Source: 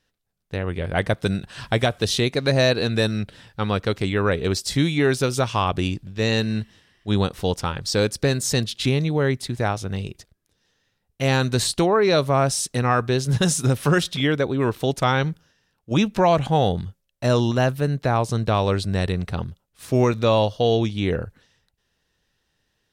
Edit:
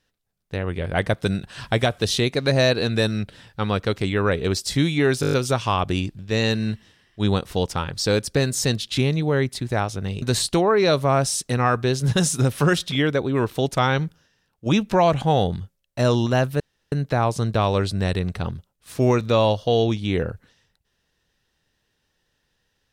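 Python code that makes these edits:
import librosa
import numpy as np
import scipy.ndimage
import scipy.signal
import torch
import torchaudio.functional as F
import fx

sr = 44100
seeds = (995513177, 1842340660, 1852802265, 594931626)

y = fx.edit(x, sr, fx.stutter(start_s=5.21, slice_s=0.02, count=7),
    fx.cut(start_s=10.1, length_s=1.37),
    fx.insert_room_tone(at_s=17.85, length_s=0.32), tone=tone)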